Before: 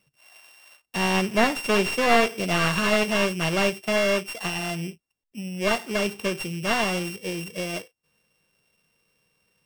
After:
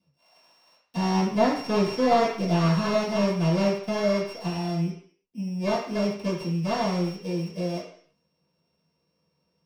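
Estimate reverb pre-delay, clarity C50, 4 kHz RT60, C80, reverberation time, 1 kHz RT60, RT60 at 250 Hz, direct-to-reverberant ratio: 3 ms, 5.5 dB, 0.60 s, 9.0 dB, 0.55 s, 0.55 s, 0.50 s, -11.0 dB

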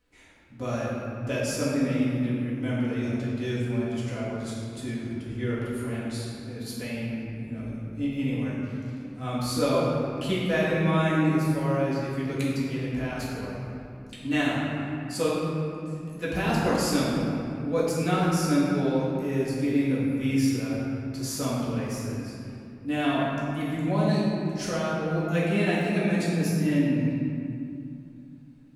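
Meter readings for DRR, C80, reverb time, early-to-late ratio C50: -8.5 dB, -0.5 dB, 2.5 s, -2.0 dB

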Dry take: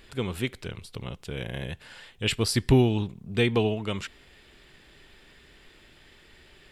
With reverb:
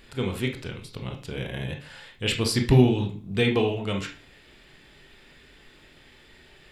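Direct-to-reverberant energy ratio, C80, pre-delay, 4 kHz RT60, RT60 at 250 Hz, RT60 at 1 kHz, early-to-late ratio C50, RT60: 3.0 dB, 15.5 dB, 21 ms, 0.45 s, 0.50 s, 0.40 s, 9.5 dB, 0.40 s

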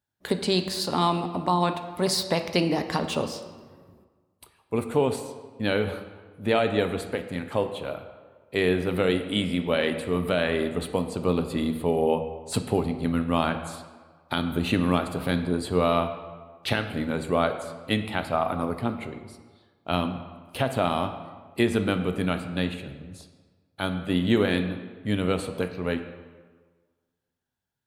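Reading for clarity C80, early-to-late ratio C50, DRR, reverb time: 10.5 dB, 9.5 dB, 7.0 dB, 1.5 s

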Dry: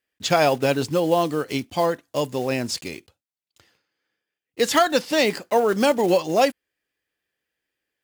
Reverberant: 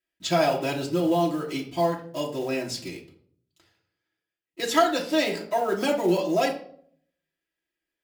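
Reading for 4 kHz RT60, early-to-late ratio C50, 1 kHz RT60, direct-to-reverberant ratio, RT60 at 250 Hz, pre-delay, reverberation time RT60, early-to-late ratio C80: 0.40 s, 10.0 dB, 0.50 s, -3.0 dB, 0.75 s, 3 ms, 0.60 s, 14.0 dB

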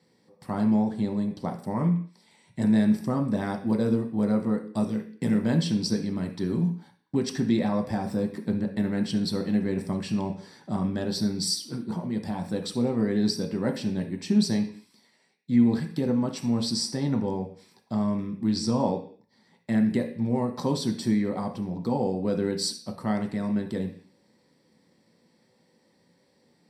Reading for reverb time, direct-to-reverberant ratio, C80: 0.50 s, 2.0 dB, 15.0 dB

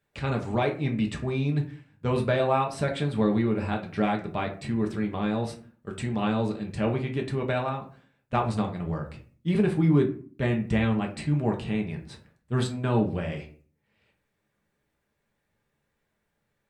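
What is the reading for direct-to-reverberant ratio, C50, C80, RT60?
1.0 dB, 11.0 dB, 16.0 dB, 0.45 s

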